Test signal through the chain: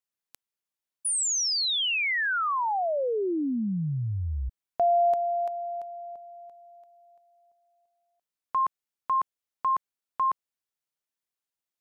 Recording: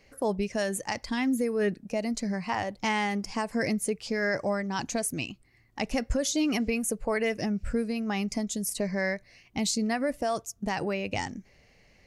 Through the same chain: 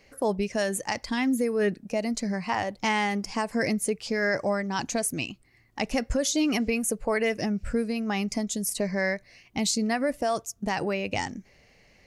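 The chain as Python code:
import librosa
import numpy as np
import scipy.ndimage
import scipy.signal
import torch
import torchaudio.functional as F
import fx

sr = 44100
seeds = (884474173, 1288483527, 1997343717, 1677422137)

y = fx.low_shelf(x, sr, hz=150.0, db=-3.5)
y = y * 10.0 ** (2.5 / 20.0)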